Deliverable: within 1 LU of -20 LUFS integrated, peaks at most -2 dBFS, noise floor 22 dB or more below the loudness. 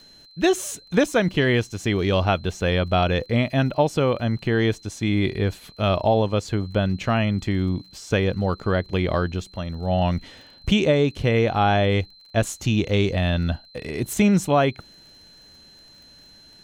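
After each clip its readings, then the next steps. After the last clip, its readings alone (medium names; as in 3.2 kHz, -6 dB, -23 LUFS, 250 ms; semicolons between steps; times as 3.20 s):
tick rate 33 per s; steady tone 4.1 kHz; tone level -48 dBFS; loudness -22.5 LUFS; peak level -5.5 dBFS; loudness target -20.0 LUFS
-> de-click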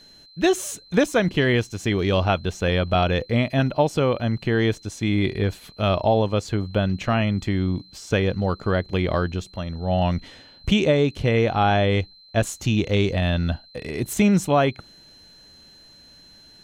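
tick rate 0.30 per s; steady tone 4.1 kHz; tone level -48 dBFS
-> band-stop 4.1 kHz, Q 30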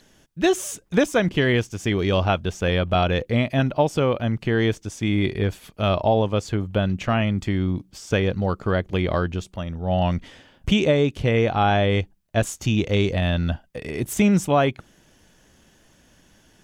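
steady tone not found; loudness -22.5 LUFS; peak level -5.5 dBFS; loudness target -20.0 LUFS
-> trim +2.5 dB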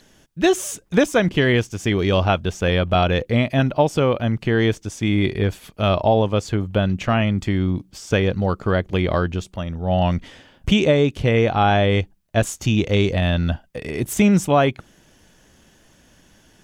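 loudness -20.0 LUFS; peak level -3.0 dBFS; noise floor -55 dBFS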